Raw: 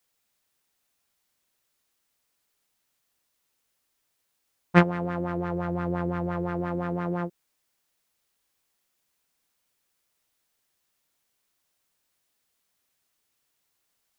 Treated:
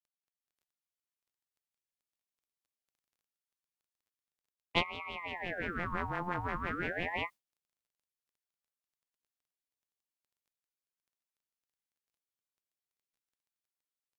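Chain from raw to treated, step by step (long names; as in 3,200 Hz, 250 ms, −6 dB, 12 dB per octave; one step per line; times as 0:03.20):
Butterworth high-pass 450 Hz 36 dB per octave
noise gate with hold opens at −28 dBFS
automatic gain control gain up to 10 dB
surface crackle 18 per second −56 dBFS
pitch vibrato 3.7 Hz 13 cents
ring modulator whose carrier an LFO sweeps 1,000 Hz, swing 65%, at 0.4 Hz
level −8 dB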